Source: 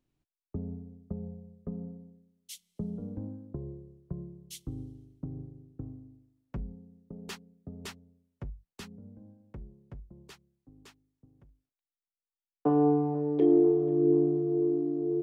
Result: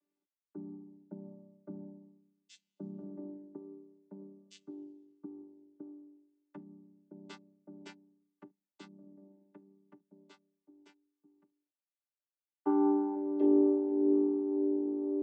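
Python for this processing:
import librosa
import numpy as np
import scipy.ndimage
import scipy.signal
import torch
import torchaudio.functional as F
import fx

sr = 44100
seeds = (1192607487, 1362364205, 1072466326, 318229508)

y = fx.chord_vocoder(x, sr, chord='bare fifth', root=55)
y = fx.peak_eq(y, sr, hz=190.0, db=-12.0, octaves=1.2)
y = F.gain(torch.from_numpy(y), 2.5).numpy()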